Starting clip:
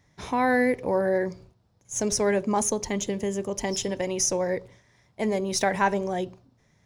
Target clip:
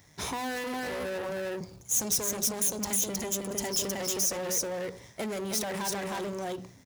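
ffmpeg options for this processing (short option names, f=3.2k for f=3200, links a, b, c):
-filter_complex "[0:a]aeval=exprs='if(lt(val(0),0),0.447*val(0),val(0))':c=same,asettb=1/sr,asplit=3[a][b][c];[a]atrim=end=1.294[d];[b]atrim=start=1.29:end=3.51,asetpts=PTS-STARTPTS,afade=t=in:d=0.004:c=qsin,afade=t=out:st=2.216:d=0.004:c=qsin,acrossover=split=210|3000[e][f][g];[f]acompressor=threshold=-34dB:ratio=6[h];[e][h][g]amix=inputs=3:normalize=0[i];[c]atrim=start=3.506[j];[d][i]acrossfade=d=0.004:c1=hsin:c2=qsin[k];[k][j]acrossfade=d=0.004:c1=qsin:c2=hsin,aecho=1:1:314:0.708,alimiter=limit=-19.5dB:level=0:latency=1:release=38,asoftclip=type=tanh:threshold=-33dB,highpass=48,acompressor=threshold=-38dB:ratio=6,aemphasis=mode=production:type=50kf,bandreject=f=61.82:t=h:w=4,bandreject=f=123.64:t=h:w=4,bandreject=f=185.46:t=h:w=4,bandreject=f=247.28:t=h:w=4,bandreject=f=309.1:t=h:w=4,volume=6.5dB"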